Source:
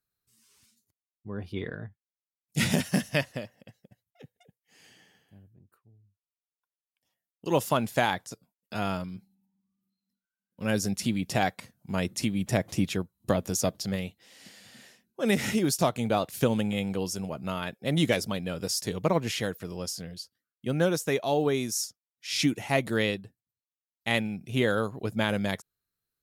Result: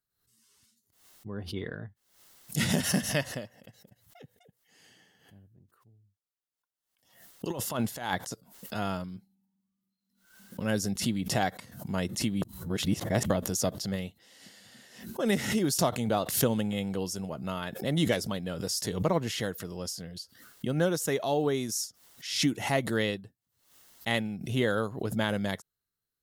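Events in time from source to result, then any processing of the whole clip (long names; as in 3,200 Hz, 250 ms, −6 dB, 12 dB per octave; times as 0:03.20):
0:07.50–0:08.74: compressor whose output falls as the input rises −29 dBFS, ratio −0.5
0:12.42–0:13.30: reverse
whole clip: notch filter 2,400 Hz, Q 7.7; background raised ahead of every attack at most 89 dB per second; level −2 dB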